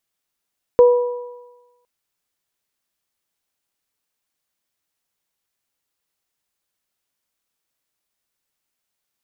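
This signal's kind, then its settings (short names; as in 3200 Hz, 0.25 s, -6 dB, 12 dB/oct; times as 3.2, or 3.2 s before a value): additive tone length 1.06 s, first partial 488 Hz, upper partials -15 dB, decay 1.06 s, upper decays 1.33 s, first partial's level -5 dB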